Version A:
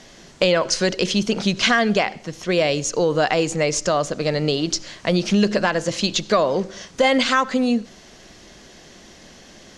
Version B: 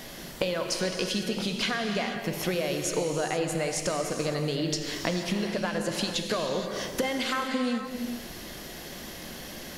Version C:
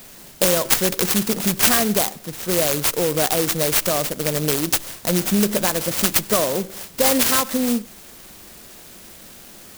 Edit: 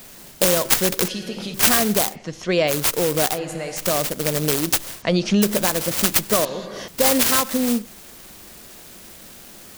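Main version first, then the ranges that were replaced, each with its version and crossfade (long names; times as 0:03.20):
C
0:01.08–0:01.54: punch in from B
0:02.14–0:02.70: punch in from A, crossfade 0.06 s
0:03.34–0:03.81: punch in from B, crossfade 0.10 s
0:05.02–0:05.42: punch in from A
0:06.45–0:06.88: punch in from B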